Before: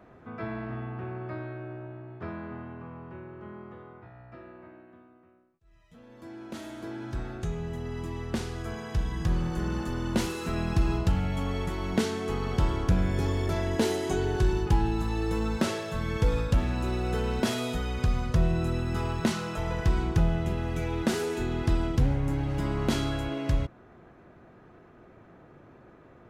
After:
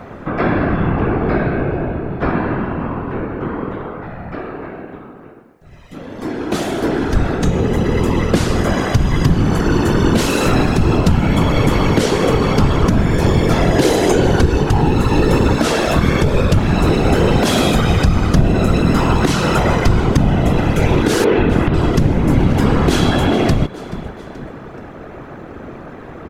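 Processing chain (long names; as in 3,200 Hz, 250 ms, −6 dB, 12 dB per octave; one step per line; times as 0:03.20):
0:21.24–0:21.74: low-pass filter 3,100 Hz 24 dB per octave
echo with shifted repeats 429 ms, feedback 45%, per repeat +45 Hz, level −22 dB
downward compressor 3 to 1, threshold −31 dBFS, peak gain reduction 10.5 dB
random phases in short frames
boost into a limiter +21.5 dB
level −1 dB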